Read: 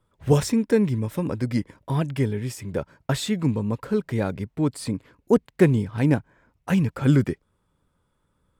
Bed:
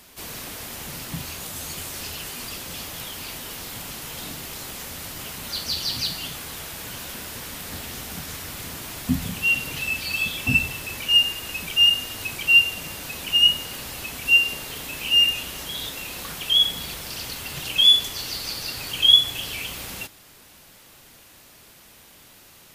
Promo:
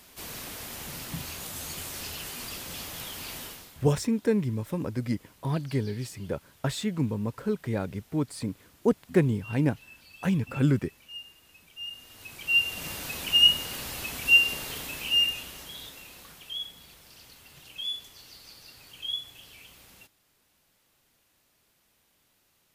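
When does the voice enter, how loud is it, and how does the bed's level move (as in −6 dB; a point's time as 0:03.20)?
3.55 s, −5.0 dB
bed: 0:03.44 −4 dB
0:03.91 −25 dB
0:11.73 −25 dB
0:12.87 −2 dB
0:14.70 −2 dB
0:16.74 −19 dB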